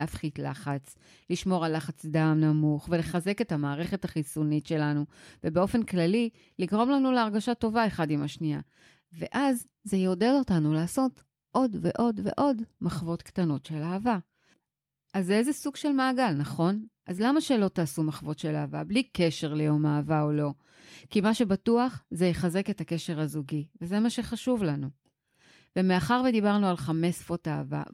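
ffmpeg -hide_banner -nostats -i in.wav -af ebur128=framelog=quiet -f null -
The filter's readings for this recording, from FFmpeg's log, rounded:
Integrated loudness:
  I:         -28.4 LUFS
  Threshold: -38.8 LUFS
Loudness range:
  LRA:         2.6 LU
  Threshold: -48.8 LUFS
  LRA low:   -30.2 LUFS
  LRA high:  -27.6 LUFS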